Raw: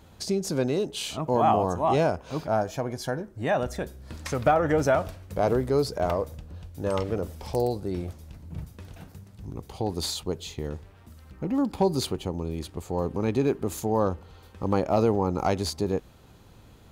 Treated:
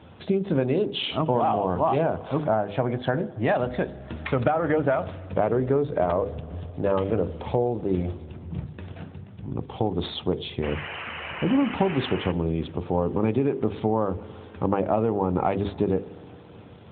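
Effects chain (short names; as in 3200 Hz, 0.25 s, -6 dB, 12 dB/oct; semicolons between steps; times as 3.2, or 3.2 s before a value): notches 50/100/150/200/250/300/350/400/450/500 Hz; 6.18–6.71 low shelf 63 Hz +5.5 dB; compressor 20:1, threshold -26 dBFS, peak gain reduction 11 dB; 14.14–14.76 treble ducked by the level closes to 2400 Hz, closed at -28 dBFS; vibrato 2.3 Hz 7.4 cents; 1.96–2.59 bell 2600 Hz -5 dB 0.46 oct; 10.62–12.32 painted sound noise 430–3100 Hz -42 dBFS; spring tank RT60 3.9 s, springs 55 ms, chirp 25 ms, DRR 18.5 dB; gain +8 dB; AMR-NB 12.2 kbps 8000 Hz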